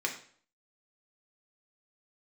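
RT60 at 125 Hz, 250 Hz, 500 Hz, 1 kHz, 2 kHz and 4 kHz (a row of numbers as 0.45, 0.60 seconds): 0.55, 0.55, 0.55, 0.50, 0.50, 0.45 seconds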